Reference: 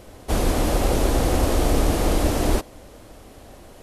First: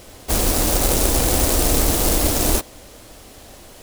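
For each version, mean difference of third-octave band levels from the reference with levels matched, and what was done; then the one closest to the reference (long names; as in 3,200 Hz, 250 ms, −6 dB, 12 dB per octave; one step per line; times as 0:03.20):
4.5 dB: stylus tracing distortion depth 0.47 ms
high-shelf EQ 2,300 Hz +11 dB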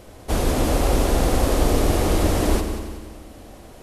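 2.0 dB: on a send: echo machine with several playback heads 92 ms, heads first and second, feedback 52%, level −12 dB
on the sum: spring reverb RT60 1.6 s, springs 46 ms, DRR 15.5 dB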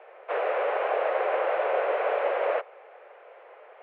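18.5 dB: parametric band 650 Hz −9.5 dB 0.62 octaves
single-sideband voice off tune +260 Hz 170–2,300 Hz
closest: second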